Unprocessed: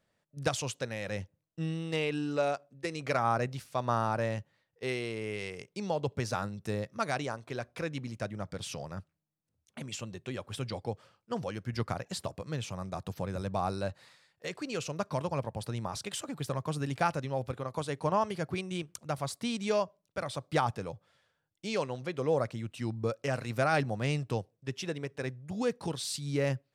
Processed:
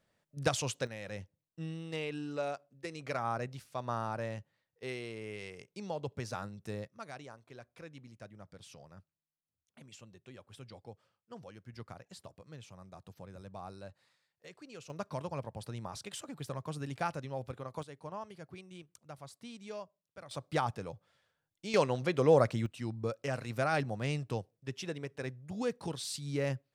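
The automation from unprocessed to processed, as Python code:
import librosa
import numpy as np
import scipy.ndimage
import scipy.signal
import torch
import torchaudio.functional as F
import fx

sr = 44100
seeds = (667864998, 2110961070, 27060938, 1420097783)

y = fx.gain(x, sr, db=fx.steps((0.0, 0.0), (0.87, -6.5), (6.88, -14.0), (14.9, -6.0), (17.83, -14.5), (20.31, -3.5), (21.74, 4.5), (22.66, -3.5)))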